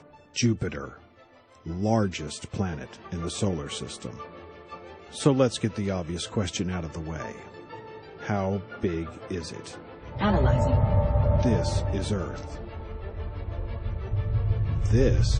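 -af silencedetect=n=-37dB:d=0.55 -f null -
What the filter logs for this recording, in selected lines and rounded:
silence_start: 0.93
silence_end: 1.66 | silence_duration: 0.73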